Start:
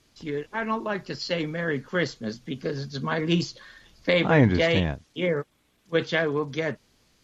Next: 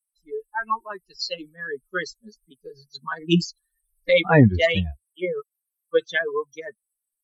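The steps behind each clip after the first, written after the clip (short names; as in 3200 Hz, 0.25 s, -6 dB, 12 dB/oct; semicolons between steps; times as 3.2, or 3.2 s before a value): per-bin expansion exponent 3; gain +8 dB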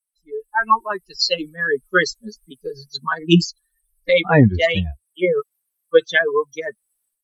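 AGC gain up to 13.5 dB; gain -1 dB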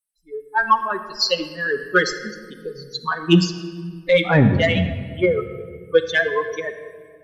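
in parallel at -7.5 dB: soft clip -12 dBFS, distortion -11 dB; on the sum: reverb RT60 1.8 s, pre-delay 5 ms, DRR 6.5 dB; gain -4 dB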